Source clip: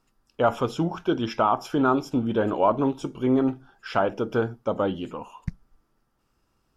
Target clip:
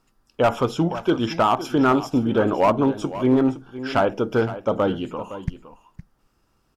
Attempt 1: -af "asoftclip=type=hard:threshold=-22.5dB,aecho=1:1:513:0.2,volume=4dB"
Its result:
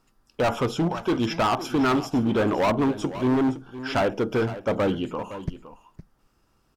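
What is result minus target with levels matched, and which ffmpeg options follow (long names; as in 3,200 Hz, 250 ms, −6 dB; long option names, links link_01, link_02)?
hard clipping: distortion +10 dB
-af "asoftclip=type=hard:threshold=-15dB,aecho=1:1:513:0.2,volume=4dB"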